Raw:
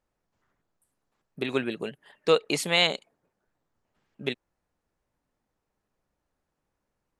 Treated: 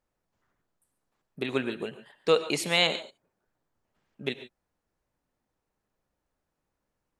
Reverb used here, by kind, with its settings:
reverb whose tail is shaped and stops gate 160 ms rising, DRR 11.5 dB
level −1.5 dB

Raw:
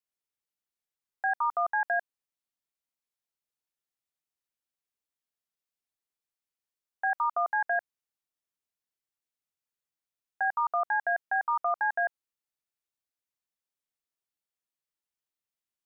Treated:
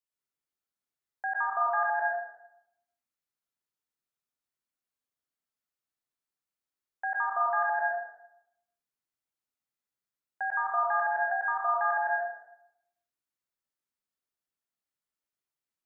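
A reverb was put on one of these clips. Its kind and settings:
dense smooth reverb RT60 0.8 s, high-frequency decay 0.3×, pre-delay 100 ms, DRR −2.5 dB
level −4.5 dB

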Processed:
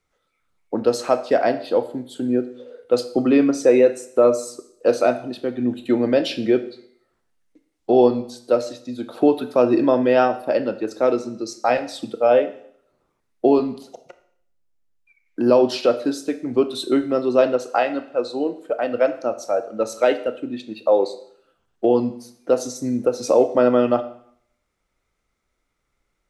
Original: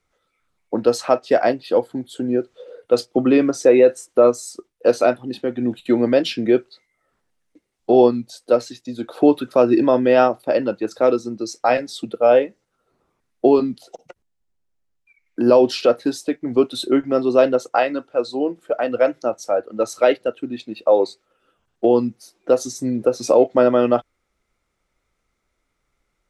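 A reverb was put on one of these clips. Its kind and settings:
four-comb reverb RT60 0.63 s, combs from 25 ms, DRR 11 dB
level −2 dB

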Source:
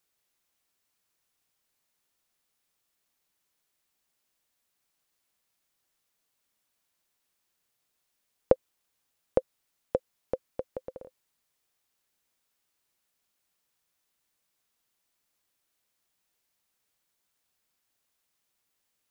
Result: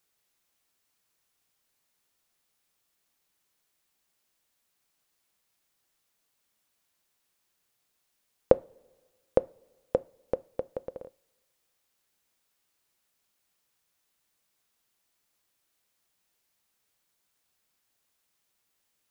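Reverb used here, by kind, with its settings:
coupled-rooms reverb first 0.3 s, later 1.6 s, from −20 dB, DRR 17 dB
level +2 dB

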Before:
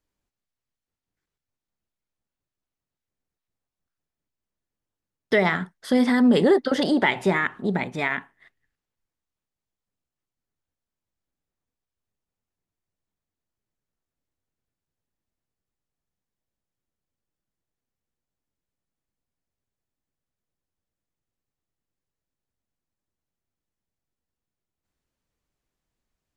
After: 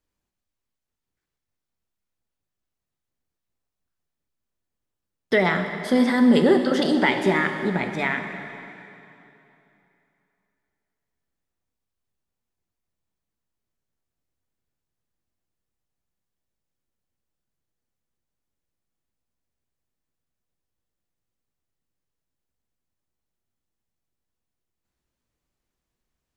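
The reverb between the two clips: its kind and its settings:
dense smooth reverb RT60 3 s, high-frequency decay 0.9×, DRR 5.5 dB

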